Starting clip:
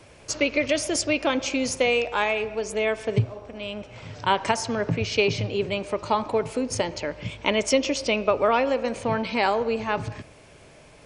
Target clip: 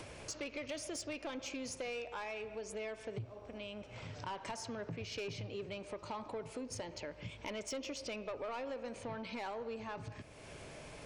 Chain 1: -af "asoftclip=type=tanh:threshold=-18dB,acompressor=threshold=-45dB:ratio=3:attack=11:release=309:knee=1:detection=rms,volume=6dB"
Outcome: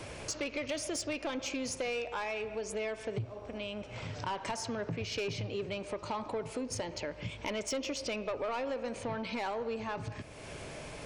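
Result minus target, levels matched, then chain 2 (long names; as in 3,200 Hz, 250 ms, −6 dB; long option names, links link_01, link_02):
downward compressor: peak gain reduction −6.5 dB
-af "asoftclip=type=tanh:threshold=-18dB,acompressor=threshold=-54.5dB:ratio=3:attack=11:release=309:knee=1:detection=rms,volume=6dB"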